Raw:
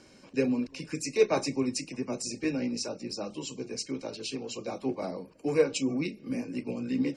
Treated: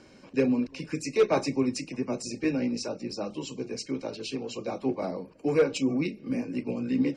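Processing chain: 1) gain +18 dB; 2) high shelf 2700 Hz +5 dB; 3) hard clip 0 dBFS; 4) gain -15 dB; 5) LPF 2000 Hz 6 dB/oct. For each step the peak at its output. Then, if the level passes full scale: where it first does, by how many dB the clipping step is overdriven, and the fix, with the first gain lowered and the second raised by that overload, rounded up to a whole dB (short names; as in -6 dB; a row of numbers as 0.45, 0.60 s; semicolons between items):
+6.0, +6.5, 0.0, -15.0, -15.0 dBFS; step 1, 6.5 dB; step 1 +11 dB, step 4 -8 dB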